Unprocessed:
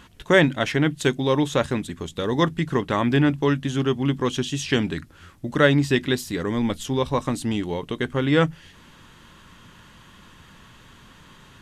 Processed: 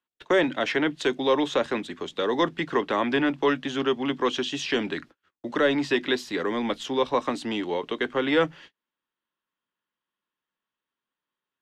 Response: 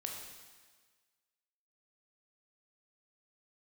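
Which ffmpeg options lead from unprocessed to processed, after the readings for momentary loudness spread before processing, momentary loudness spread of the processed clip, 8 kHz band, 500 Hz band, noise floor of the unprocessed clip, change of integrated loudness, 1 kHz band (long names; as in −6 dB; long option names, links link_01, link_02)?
9 LU, 6 LU, −7.0 dB, −1.5 dB, −50 dBFS, −3.0 dB, −0.5 dB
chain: -filter_complex "[0:a]agate=range=-40dB:threshold=-41dB:ratio=16:detection=peak,acrossover=split=250 5400:gain=0.0794 1 0.112[link_01][link_02][link_03];[link_01][link_02][link_03]amix=inputs=3:normalize=0,acrossover=split=390|420|5300[link_04][link_05][link_06][link_07];[link_04]asoftclip=type=tanh:threshold=-26.5dB[link_08];[link_06]alimiter=limit=-17dB:level=0:latency=1:release=107[link_09];[link_08][link_05][link_09][link_07]amix=inputs=4:normalize=0,volume=2dB"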